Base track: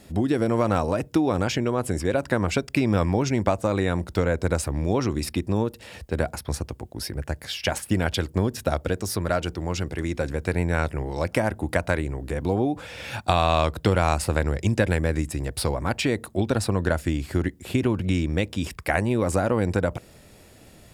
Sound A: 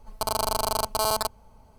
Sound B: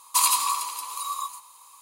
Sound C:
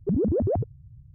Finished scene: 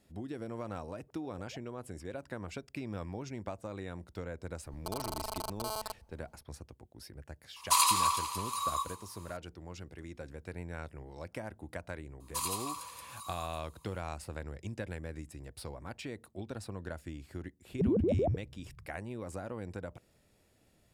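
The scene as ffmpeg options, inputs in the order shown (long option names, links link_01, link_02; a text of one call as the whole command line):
ffmpeg -i bed.wav -i cue0.wav -i cue1.wav -i cue2.wav -filter_complex "[3:a]asplit=2[link_01][link_02];[2:a]asplit=2[link_03][link_04];[0:a]volume=-18.5dB[link_05];[link_01]highpass=frequency=800:width=0.5412,highpass=frequency=800:width=1.3066[link_06];[link_03]highshelf=frequency=9200:gain=-10[link_07];[link_04]highshelf=frequency=12000:gain=-3[link_08];[link_02]equalizer=frequency=1400:width_type=o:width=0.77:gain=-8[link_09];[link_06]atrim=end=1.14,asetpts=PTS-STARTPTS,volume=-17.5dB,afade=type=in:duration=0.004:curve=hsin,afade=type=out:start_time=1.136:duration=0.004:curve=hsin,adelay=1010[link_10];[1:a]atrim=end=1.78,asetpts=PTS-STARTPTS,volume=-13.5dB,afade=type=in:duration=0.004:curve=hsin,afade=type=out:start_time=1.776:duration=0.004:curve=hsin,adelay=205065S[link_11];[link_07]atrim=end=1.81,asetpts=PTS-STARTPTS,volume=-2dB,afade=type=in:duration=0.004:curve=hsin,afade=type=out:start_time=1.806:duration=0.004:curve=hsin,adelay=7560[link_12];[link_08]atrim=end=1.81,asetpts=PTS-STARTPTS,volume=-14.5dB,afade=type=in:duration=0.004:curve=hsin,afade=type=out:start_time=1.806:duration=0.004:curve=hsin,adelay=538020S[link_13];[link_09]atrim=end=1.14,asetpts=PTS-STARTPTS,volume=-5dB,afade=type=in:duration=0.004:curve=hsin,afade=type=out:start_time=1.136:duration=0.004:curve=hsin,adelay=17720[link_14];[link_05][link_10][link_11][link_12][link_13][link_14]amix=inputs=6:normalize=0" out.wav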